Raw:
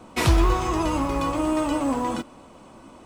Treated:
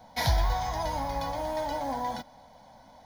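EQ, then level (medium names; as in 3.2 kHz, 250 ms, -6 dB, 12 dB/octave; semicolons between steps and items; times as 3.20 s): peaking EQ 800 Hz +7 dB 0.71 oct; treble shelf 3.1 kHz +8.5 dB; static phaser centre 1.8 kHz, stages 8; -6.0 dB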